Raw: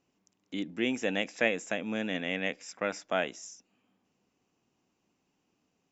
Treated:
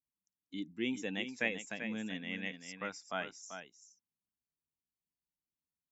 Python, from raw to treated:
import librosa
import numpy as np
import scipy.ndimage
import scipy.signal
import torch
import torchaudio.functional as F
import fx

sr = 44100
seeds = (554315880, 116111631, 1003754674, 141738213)

y = fx.bin_expand(x, sr, power=1.5)
y = fx.peak_eq(y, sr, hz=590.0, db=-7.5, octaves=0.68)
y = y + 10.0 ** (-9.0 / 20.0) * np.pad(y, (int(389 * sr / 1000.0), 0))[:len(y)]
y = F.gain(torch.from_numpy(y), -3.5).numpy()